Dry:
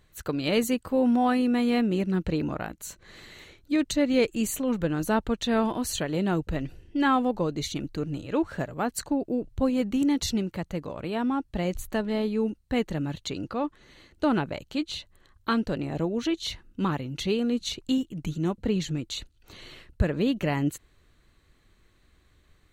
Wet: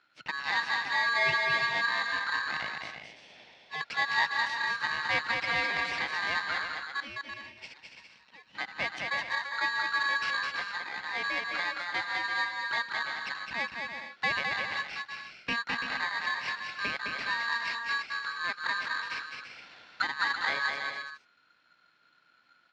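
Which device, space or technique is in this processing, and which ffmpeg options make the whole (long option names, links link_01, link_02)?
ring modulator pedal into a guitar cabinet: -filter_complex "[0:a]asettb=1/sr,asplit=3[link_01][link_02][link_03];[link_01]atrim=end=2.594[link_04];[link_02]atrim=start=2.59:end=3.81,asetpts=PTS-STARTPTS,afade=type=in:duration=0.004:curve=qsin,afade=type=out:start_time=1.216:duration=0.004:curve=qsin,highpass=frequency=400:width=0.5412,highpass=frequency=400:width=1.3066[link_05];[link_03]atrim=start=3.806[link_06];[link_04][link_05]acrossfade=duration=0.004:curve1=hsin:curve2=qsin[link_07];[link_07][link_06]acrossfade=duration=0.004:curve1=qsin:curve2=hsin,asettb=1/sr,asplit=3[link_08][link_09][link_10];[link_08]atrim=end=7.004[link_11];[link_09]atrim=start=7:end=8.55,asetpts=PTS-STARTPTS,afade=type=in:duration=0.004:curve=qsin,afade=type=out:start_time=1.546:duration=0.004:curve=qsin,aderivative[link_12];[link_10]atrim=start=8.546[link_13];[link_11][link_12]acrossfade=duration=0.004:curve1=hsin:curve2=qsin[link_14];[link_14][link_13]acrossfade=duration=0.004:curve1=qsin:curve2=hsin,aeval=exprs='val(0)*sgn(sin(2*PI*1400*n/s))':channel_layout=same,highpass=88,equalizer=frequency=89:width_type=q:width=4:gain=-8,equalizer=frequency=380:width_type=q:width=4:gain=-4,equalizer=frequency=1200:width_type=q:width=4:gain=-6,equalizer=frequency=2200:width_type=q:width=4:gain=6,lowpass=frequency=4400:width=0.5412,lowpass=frequency=4400:width=1.3066,aecho=1:1:210|336|411.6|457|484.2:0.631|0.398|0.251|0.158|0.1,volume=-5.5dB"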